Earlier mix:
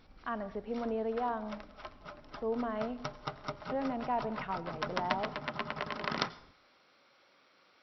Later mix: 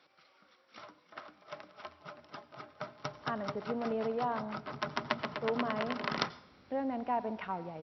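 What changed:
speech: entry +3.00 s; master: add HPF 73 Hz 24 dB/oct

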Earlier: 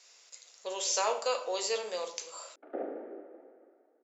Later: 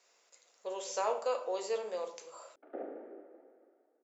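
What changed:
speech: add bell 5000 Hz -13 dB 2.8 oct; background -5.0 dB

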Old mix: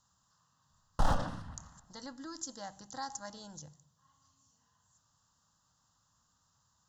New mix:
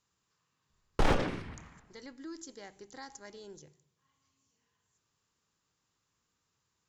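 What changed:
speech -9.0 dB; master: remove fixed phaser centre 950 Hz, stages 4

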